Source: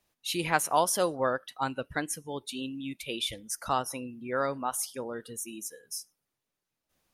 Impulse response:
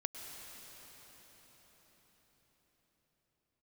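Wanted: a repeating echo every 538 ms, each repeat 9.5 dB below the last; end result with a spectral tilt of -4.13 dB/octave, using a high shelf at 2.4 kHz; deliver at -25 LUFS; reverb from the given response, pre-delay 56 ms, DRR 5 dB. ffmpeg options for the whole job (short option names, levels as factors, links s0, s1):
-filter_complex "[0:a]highshelf=f=2400:g=-9,aecho=1:1:538|1076|1614|2152:0.335|0.111|0.0365|0.012,asplit=2[s0][s1];[1:a]atrim=start_sample=2205,adelay=56[s2];[s1][s2]afir=irnorm=-1:irlink=0,volume=0.562[s3];[s0][s3]amix=inputs=2:normalize=0,volume=2.24"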